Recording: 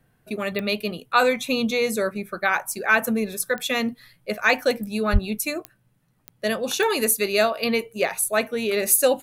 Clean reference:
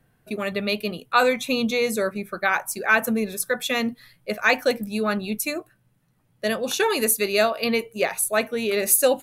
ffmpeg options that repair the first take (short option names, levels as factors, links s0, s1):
-filter_complex "[0:a]adeclick=t=4,asplit=3[s0][s1][s2];[s0]afade=t=out:st=5.12:d=0.02[s3];[s1]highpass=f=140:w=0.5412,highpass=f=140:w=1.3066,afade=t=in:st=5.12:d=0.02,afade=t=out:st=5.24:d=0.02[s4];[s2]afade=t=in:st=5.24:d=0.02[s5];[s3][s4][s5]amix=inputs=3:normalize=0"